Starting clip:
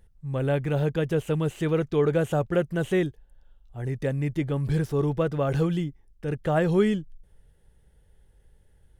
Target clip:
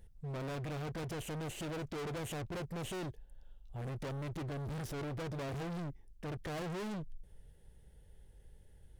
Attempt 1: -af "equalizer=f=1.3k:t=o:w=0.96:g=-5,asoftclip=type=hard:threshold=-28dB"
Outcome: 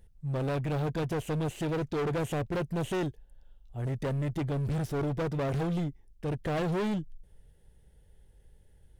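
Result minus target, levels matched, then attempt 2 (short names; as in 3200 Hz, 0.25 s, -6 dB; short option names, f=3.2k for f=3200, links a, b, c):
hard clip: distortion -4 dB
-af "equalizer=f=1.3k:t=o:w=0.96:g=-5,asoftclip=type=hard:threshold=-39dB"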